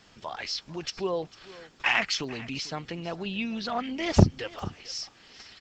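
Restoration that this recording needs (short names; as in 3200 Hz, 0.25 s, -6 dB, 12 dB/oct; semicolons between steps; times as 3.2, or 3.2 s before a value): clip repair -5 dBFS; interpolate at 2.24/4.59, 1.1 ms; inverse comb 0.447 s -19 dB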